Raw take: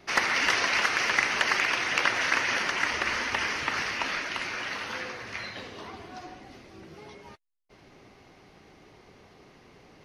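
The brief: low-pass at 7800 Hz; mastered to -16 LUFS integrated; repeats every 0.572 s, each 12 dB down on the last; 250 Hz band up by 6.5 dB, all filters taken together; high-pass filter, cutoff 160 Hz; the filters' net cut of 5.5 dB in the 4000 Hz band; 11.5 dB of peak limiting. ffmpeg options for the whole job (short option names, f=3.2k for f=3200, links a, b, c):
-af "highpass=160,lowpass=7.8k,equalizer=f=250:t=o:g=9,equalizer=f=4k:t=o:g=-8,alimiter=limit=-19.5dB:level=0:latency=1,aecho=1:1:572|1144|1716:0.251|0.0628|0.0157,volume=14.5dB"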